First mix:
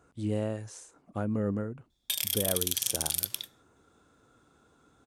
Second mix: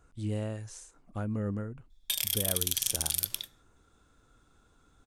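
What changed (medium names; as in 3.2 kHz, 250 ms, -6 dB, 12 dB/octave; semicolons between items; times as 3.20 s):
speech: add peaking EQ 460 Hz -5.5 dB 2.8 oct; master: remove high-pass 88 Hz 12 dB/octave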